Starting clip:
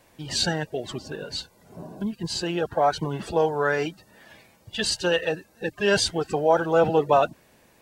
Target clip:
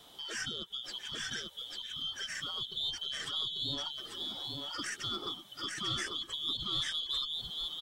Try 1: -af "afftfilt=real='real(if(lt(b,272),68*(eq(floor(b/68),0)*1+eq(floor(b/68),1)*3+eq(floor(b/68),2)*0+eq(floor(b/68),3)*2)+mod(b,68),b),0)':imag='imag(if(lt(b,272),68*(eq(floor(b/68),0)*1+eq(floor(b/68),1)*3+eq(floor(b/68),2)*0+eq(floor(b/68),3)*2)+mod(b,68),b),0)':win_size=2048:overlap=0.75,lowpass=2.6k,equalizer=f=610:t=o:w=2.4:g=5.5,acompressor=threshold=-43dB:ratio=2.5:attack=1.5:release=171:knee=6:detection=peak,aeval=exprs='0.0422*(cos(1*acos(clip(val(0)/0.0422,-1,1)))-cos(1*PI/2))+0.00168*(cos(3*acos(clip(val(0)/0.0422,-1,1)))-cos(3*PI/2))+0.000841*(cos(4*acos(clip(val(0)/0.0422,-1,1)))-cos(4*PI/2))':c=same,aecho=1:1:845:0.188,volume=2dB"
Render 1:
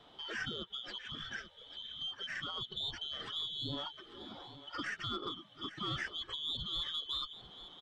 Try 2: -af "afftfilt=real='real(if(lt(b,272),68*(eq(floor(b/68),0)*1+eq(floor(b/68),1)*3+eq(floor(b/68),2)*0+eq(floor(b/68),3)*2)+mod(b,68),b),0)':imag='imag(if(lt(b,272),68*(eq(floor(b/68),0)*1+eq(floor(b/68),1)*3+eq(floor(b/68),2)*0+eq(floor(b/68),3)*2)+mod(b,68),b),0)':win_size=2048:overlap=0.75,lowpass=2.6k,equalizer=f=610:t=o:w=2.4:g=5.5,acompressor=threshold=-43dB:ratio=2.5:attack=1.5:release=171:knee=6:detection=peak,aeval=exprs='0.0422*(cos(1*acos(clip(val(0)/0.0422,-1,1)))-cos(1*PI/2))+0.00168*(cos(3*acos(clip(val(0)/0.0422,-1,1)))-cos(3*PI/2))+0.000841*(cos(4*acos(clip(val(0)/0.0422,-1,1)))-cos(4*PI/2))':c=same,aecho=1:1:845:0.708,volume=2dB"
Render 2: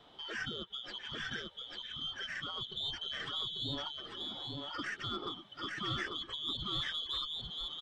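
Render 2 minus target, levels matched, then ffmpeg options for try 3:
2000 Hz band +3.5 dB
-af "afftfilt=real='real(if(lt(b,272),68*(eq(floor(b/68),0)*1+eq(floor(b/68),1)*3+eq(floor(b/68),2)*0+eq(floor(b/68),3)*2)+mod(b,68),b),0)':imag='imag(if(lt(b,272),68*(eq(floor(b/68),0)*1+eq(floor(b/68),1)*3+eq(floor(b/68),2)*0+eq(floor(b/68),3)*2)+mod(b,68),b),0)':win_size=2048:overlap=0.75,equalizer=f=610:t=o:w=2.4:g=5.5,acompressor=threshold=-43dB:ratio=2.5:attack=1.5:release=171:knee=6:detection=peak,aeval=exprs='0.0422*(cos(1*acos(clip(val(0)/0.0422,-1,1)))-cos(1*PI/2))+0.00168*(cos(3*acos(clip(val(0)/0.0422,-1,1)))-cos(3*PI/2))+0.000841*(cos(4*acos(clip(val(0)/0.0422,-1,1)))-cos(4*PI/2))':c=same,aecho=1:1:845:0.708,volume=2dB"

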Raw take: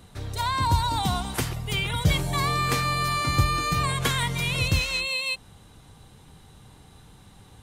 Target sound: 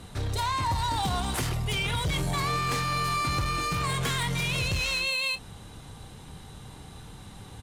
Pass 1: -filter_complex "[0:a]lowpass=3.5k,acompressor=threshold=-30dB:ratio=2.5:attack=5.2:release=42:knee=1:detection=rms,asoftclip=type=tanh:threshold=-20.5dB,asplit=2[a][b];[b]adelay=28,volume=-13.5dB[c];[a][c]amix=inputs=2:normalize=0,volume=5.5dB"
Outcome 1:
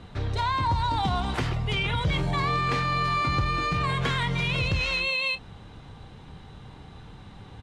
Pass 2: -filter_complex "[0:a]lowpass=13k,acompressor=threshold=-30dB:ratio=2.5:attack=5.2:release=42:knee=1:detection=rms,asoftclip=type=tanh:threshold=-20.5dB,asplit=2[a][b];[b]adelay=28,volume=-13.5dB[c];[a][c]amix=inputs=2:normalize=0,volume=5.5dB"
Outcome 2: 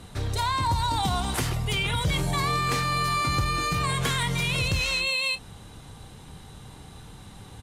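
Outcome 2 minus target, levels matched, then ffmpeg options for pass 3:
soft clip: distortion -11 dB
-filter_complex "[0:a]lowpass=13k,acompressor=threshold=-30dB:ratio=2.5:attack=5.2:release=42:knee=1:detection=rms,asoftclip=type=tanh:threshold=-28.5dB,asplit=2[a][b];[b]adelay=28,volume=-13.5dB[c];[a][c]amix=inputs=2:normalize=0,volume=5.5dB"

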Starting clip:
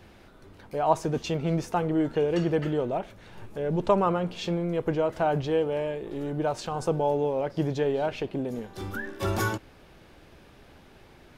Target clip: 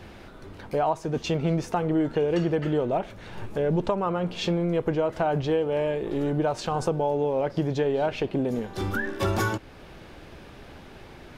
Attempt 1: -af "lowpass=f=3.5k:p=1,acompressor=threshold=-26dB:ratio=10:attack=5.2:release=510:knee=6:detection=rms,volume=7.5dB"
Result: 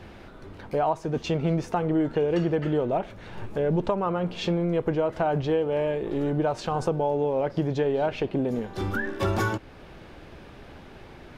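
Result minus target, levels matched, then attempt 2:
8000 Hz band -4.0 dB
-af "lowpass=f=7.4k:p=1,acompressor=threshold=-26dB:ratio=10:attack=5.2:release=510:knee=6:detection=rms,volume=7.5dB"

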